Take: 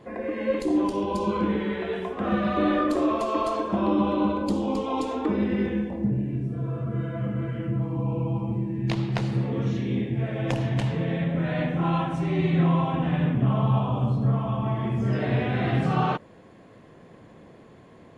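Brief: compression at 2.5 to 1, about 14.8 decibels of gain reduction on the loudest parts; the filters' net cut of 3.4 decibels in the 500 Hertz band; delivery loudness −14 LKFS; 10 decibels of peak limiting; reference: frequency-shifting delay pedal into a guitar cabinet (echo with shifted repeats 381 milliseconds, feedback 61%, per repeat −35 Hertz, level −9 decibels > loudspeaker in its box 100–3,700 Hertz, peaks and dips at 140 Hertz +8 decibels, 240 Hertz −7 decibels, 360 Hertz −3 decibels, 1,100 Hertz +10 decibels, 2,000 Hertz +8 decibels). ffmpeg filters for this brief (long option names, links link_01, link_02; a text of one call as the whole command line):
ffmpeg -i in.wav -filter_complex "[0:a]equalizer=frequency=500:width_type=o:gain=-3.5,acompressor=threshold=-42dB:ratio=2.5,alimiter=level_in=8.5dB:limit=-24dB:level=0:latency=1,volume=-8.5dB,asplit=9[link_01][link_02][link_03][link_04][link_05][link_06][link_07][link_08][link_09];[link_02]adelay=381,afreqshift=-35,volume=-9dB[link_10];[link_03]adelay=762,afreqshift=-70,volume=-13.3dB[link_11];[link_04]adelay=1143,afreqshift=-105,volume=-17.6dB[link_12];[link_05]adelay=1524,afreqshift=-140,volume=-21.9dB[link_13];[link_06]adelay=1905,afreqshift=-175,volume=-26.2dB[link_14];[link_07]adelay=2286,afreqshift=-210,volume=-30.5dB[link_15];[link_08]adelay=2667,afreqshift=-245,volume=-34.8dB[link_16];[link_09]adelay=3048,afreqshift=-280,volume=-39.1dB[link_17];[link_01][link_10][link_11][link_12][link_13][link_14][link_15][link_16][link_17]amix=inputs=9:normalize=0,highpass=100,equalizer=frequency=140:width_type=q:width=4:gain=8,equalizer=frequency=240:width_type=q:width=4:gain=-7,equalizer=frequency=360:width_type=q:width=4:gain=-3,equalizer=frequency=1100:width_type=q:width=4:gain=10,equalizer=frequency=2000:width_type=q:width=4:gain=8,lowpass=frequency=3700:width=0.5412,lowpass=frequency=3700:width=1.3066,volume=24dB" out.wav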